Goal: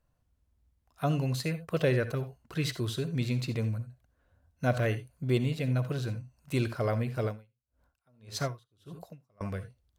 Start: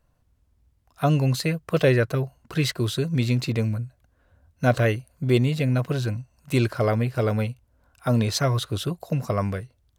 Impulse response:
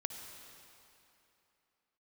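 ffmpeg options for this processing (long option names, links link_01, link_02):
-filter_complex "[1:a]atrim=start_sample=2205,atrim=end_sample=3969,asetrate=42777,aresample=44100[link_01];[0:a][link_01]afir=irnorm=-1:irlink=0,asettb=1/sr,asplit=3[link_02][link_03][link_04];[link_02]atrim=end=7.244[link_05];[link_03]atrim=start=7.24:end=9.41,asetpts=PTS-STARTPTS,afade=type=in:duration=0.004:curve=qsin,afade=type=out:start_time=2.166:duration=0.004:curve=qsin,aeval=exprs='val(0)*pow(10,-38*(0.5-0.5*cos(2*PI*1.7*n/s))/20)':channel_layout=same[link_06];[link_04]atrim=start=9.406[link_07];[link_05][link_06]acrossfade=duration=0.004:curve1=hsin:curve2=qsin[link_08];[link_08][link_07]acrossfade=duration=0.004:curve1=qsin:curve2=hsin,volume=-6.5dB"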